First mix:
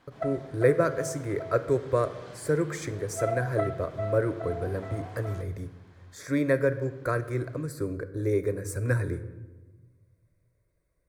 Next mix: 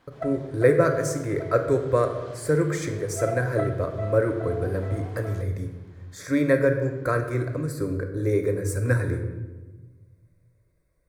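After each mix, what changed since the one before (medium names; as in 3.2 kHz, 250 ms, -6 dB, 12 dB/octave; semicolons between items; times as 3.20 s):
speech: send +9.5 dB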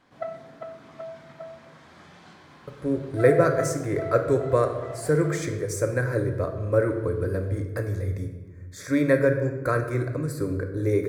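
speech: entry +2.60 s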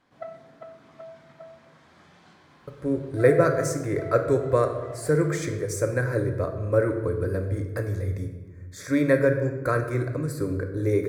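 background -5.0 dB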